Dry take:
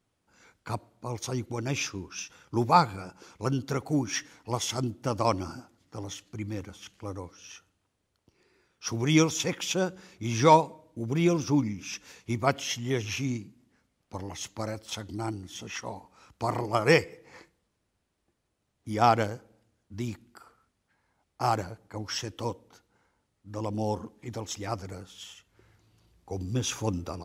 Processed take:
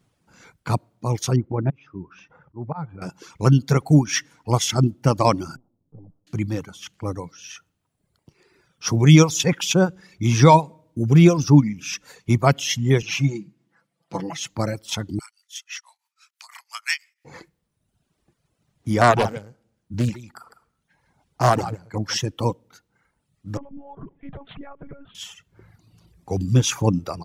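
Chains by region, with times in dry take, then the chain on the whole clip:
1.36–3.02 LPF 1200 Hz + auto swell 0.606 s
5.56–6.27 half-wave gain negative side -12 dB + compressor 3:1, threshold -52 dBFS + Gaussian blur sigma 11 samples
13.02–14.5 Bessel high-pass 190 Hz + high shelf 7400 Hz -10 dB + comb 6 ms, depth 75%
15.19–17.25 Bessel high-pass 2200 Hz, order 6 + tremolo triangle 6 Hz, depth 95%
19.01–22.17 echo 0.153 s -8 dB + Doppler distortion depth 0.5 ms
23.57–25.15 LPF 2000 Hz + compressor 10:1, threshold -41 dBFS + monotone LPC vocoder at 8 kHz 280 Hz
whole clip: bell 150 Hz +9.5 dB 0.77 oct; reverb removal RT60 1 s; maximiser +9.5 dB; gain -1 dB

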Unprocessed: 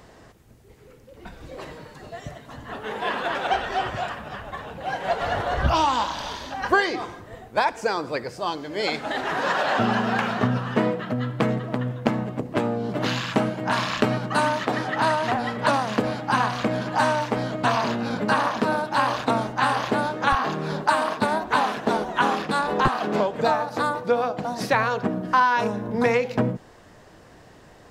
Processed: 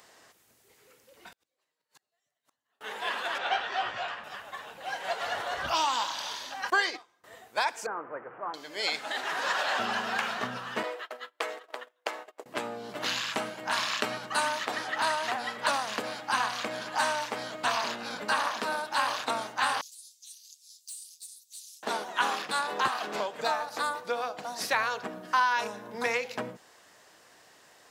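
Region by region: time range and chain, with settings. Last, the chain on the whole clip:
1.32–2.81 high shelf 3900 Hz +7 dB + flipped gate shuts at -32 dBFS, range -39 dB
3.38–4.24 LPF 4100 Hz + doubler 17 ms -4 dB
6.7–7.24 gate -28 dBFS, range -23 dB + bell 10000 Hz -3 dB 0.33 oct
7.86–8.54 delta modulation 16 kbps, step -29.5 dBFS + elliptic band-pass 120–1400 Hz, stop band 50 dB
10.83–12.46 steep high-pass 360 Hz + gate -35 dBFS, range -26 dB
19.81–21.83 inverse Chebyshev high-pass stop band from 1400 Hz, stop band 70 dB + overloaded stage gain 34.5 dB
whole clip: HPF 1200 Hz 6 dB/oct; high shelf 4700 Hz +7 dB; gain -3 dB

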